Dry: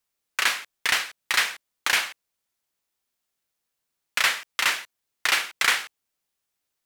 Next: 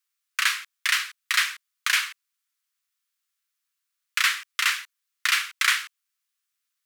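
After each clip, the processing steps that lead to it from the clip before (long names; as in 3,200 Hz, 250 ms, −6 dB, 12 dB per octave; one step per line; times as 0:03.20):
Butterworth high-pass 1,100 Hz 48 dB per octave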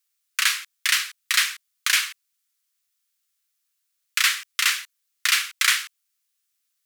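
high-shelf EQ 2,600 Hz +9.5 dB
level −3 dB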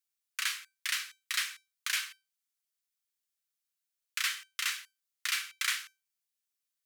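tuned comb filter 780 Hz, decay 0.26 s, mix 60%
level −4.5 dB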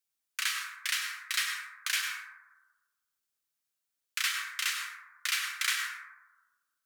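dense smooth reverb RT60 1.2 s, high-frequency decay 0.25×, pre-delay 85 ms, DRR 2 dB
level +1 dB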